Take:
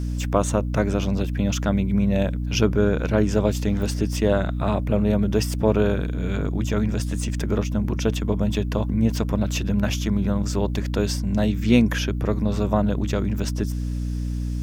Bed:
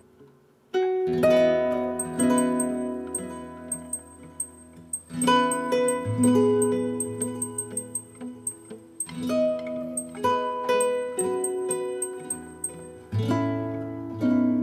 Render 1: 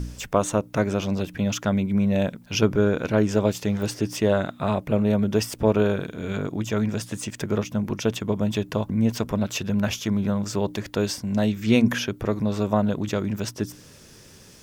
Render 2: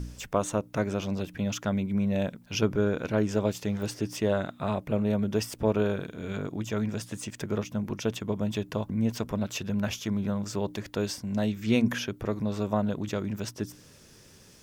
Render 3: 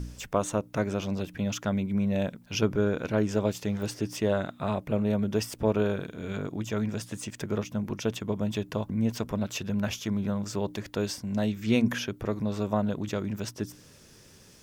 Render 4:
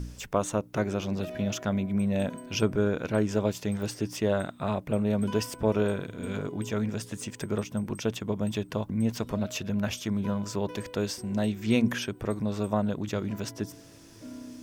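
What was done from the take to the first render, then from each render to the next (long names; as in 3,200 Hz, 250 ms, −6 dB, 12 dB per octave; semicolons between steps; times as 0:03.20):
hum removal 60 Hz, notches 5
level −5.5 dB
no processing that can be heard
mix in bed −21 dB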